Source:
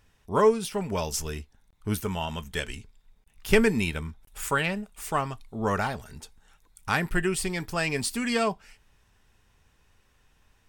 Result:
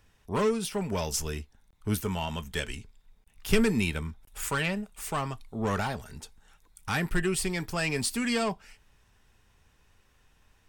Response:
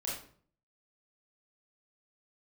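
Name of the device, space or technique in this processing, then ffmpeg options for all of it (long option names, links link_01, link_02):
one-band saturation: -filter_complex "[0:a]acrossover=split=290|2700[link_01][link_02][link_03];[link_02]asoftclip=type=tanh:threshold=-26dB[link_04];[link_01][link_04][link_03]amix=inputs=3:normalize=0"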